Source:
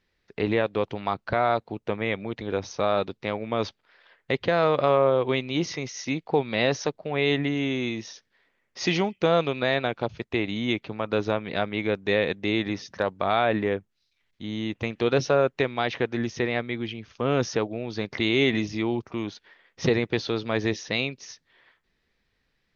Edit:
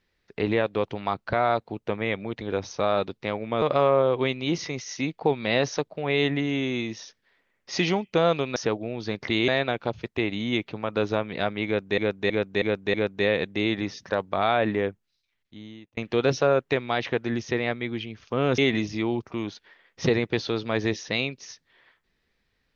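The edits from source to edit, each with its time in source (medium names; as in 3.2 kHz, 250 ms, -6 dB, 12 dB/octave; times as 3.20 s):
3.62–4.70 s: delete
11.82–12.14 s: loop, 5 plays
13.76–14.85 s: fade out
17.46–18.38 s: move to 9.64 s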